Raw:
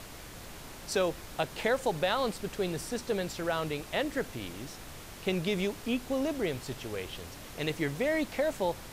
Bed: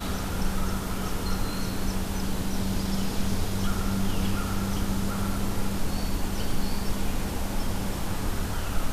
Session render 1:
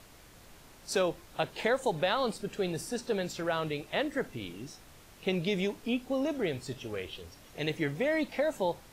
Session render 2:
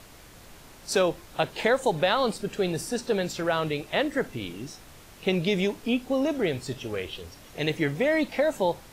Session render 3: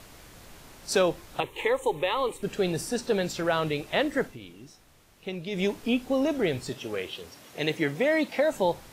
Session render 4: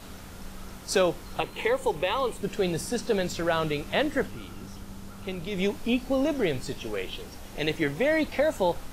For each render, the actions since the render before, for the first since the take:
noise print and reduce 9 dB
gain +5.5 dB
1.4–2.43 fixed phaser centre 1000 Hz, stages 8; 4.22–5.66 dip -10 dB, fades 0.16 s; 6.69–8.52 Bessel high-pass 170 Hz
add bed -14.5 dB

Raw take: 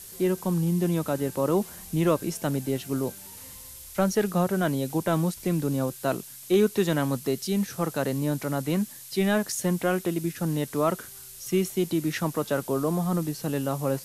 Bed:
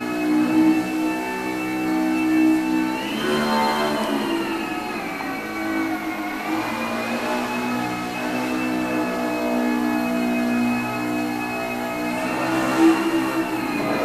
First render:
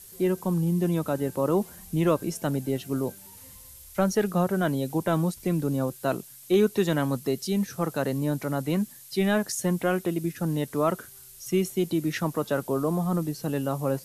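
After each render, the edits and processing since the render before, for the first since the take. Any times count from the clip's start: denoiser 6 dB, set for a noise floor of -44 dBFS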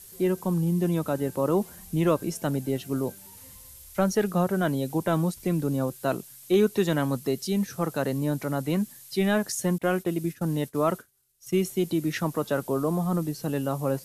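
9.78–11.54 expander -35 dBFS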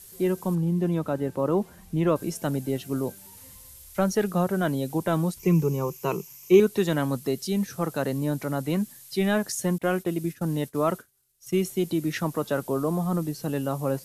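0.55–2.16 high shelf 4700 Hz -11.5 dB; 5.39–6.6 ripple EQ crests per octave 0.77, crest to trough 14 dB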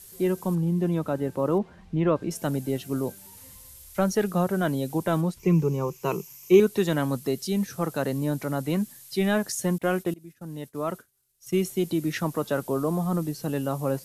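1.58–2.31 LPF 3500 Hz; 5.2–6.04 high shelf 5300 Hz -> 10000 Hz -10 dB; 10.14–11.55 fade in, from -23 dB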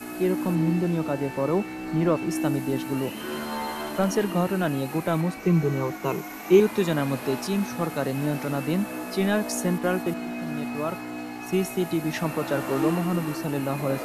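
add bed -11 dB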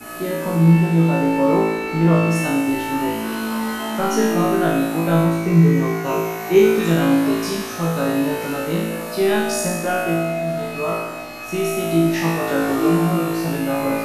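flutter echo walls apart 3.1 m, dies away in 1.1 s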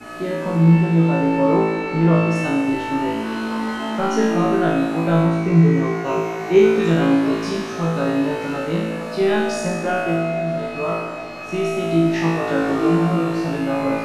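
air absorption 85 m; tape echo 0.228 s, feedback 82%, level -16 dB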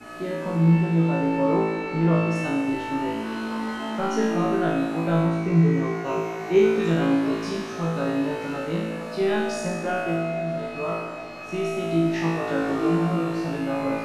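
gain -5 dB

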